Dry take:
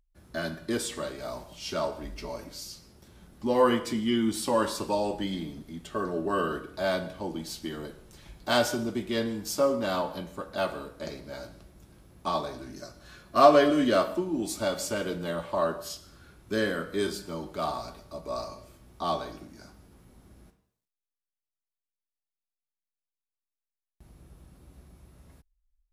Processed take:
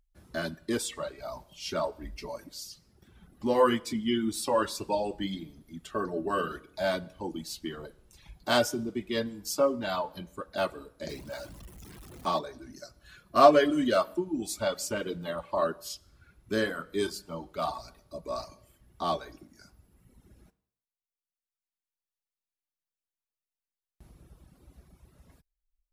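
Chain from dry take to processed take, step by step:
0:11.09–0:12.39: converter with a step at zero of −40.5 dBFS
reverb reduction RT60 1.7 s

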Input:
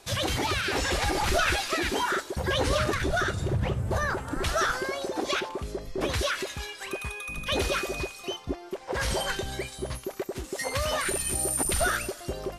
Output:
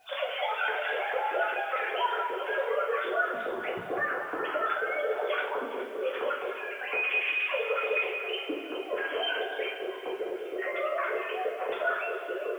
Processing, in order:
three sine waves on the formant tracks
downward compressor 6 to 1, threshold −31 dBFS, peak gain reduction 15.5 dB
bit reduction 11 bits
delay that swaps between a low-pass and a high-pass 207 ms, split 1,400 Hz, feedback 56%, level −7 dB
coupled-rooms reverb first 0.47 s, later 4.4 s, from −19 dB, DRR −7.5 dB
level −4 dB

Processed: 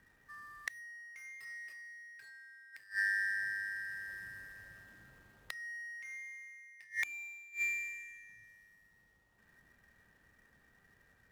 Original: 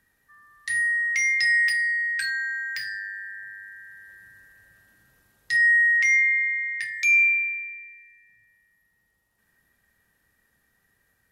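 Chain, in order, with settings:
running median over 9 samples
gate with flip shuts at −26 dBFS, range −29 dB
level +3 dB

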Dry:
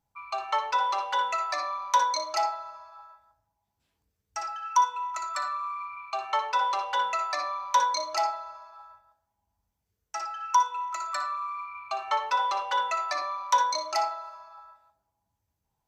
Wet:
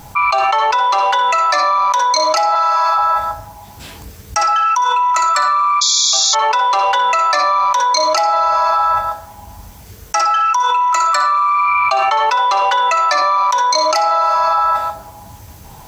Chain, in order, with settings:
0:02.55–0:02.98: high-pass filter 860 Hz 12 dB per octave
0:05.81–0:06.35: sound drawn into the spectrogram noise 3,300–7,300 Hz −19 dBFS
envelope flattener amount 100%
level +3.5 dB

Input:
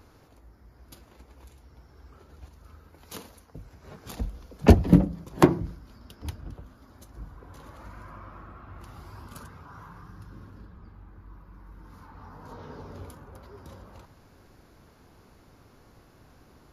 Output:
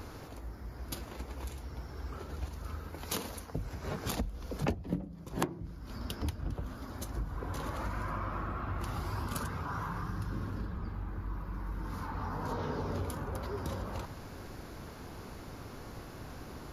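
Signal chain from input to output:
downward compressor 12 to 1, threshold −41 dBFS, peak gain reduction 32 dB
level +10 dB

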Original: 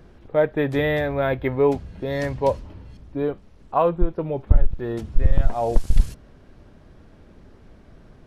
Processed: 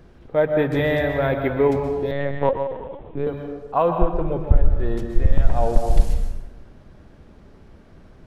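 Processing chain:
dense smooth reverb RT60 1.2 s, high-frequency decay 0.6×, pre-delay 110 ms, DRR 4.5 dB
0:02.11–0:03.27: linear-prediction vocoder at 8 kHz pitch kept

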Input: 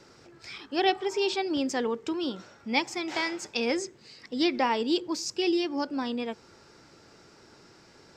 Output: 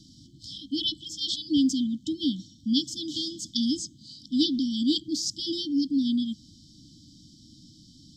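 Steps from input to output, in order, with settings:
linear-phase brick-wall band-stop 320–3,000 Hz
high-shelf EQ 4,800 Hz −6.5 dB
level +8 dB

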